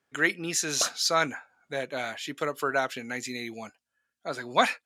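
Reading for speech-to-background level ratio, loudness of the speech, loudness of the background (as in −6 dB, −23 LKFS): 8.5 dB, −29.0 LKFS, −37.5 LKFS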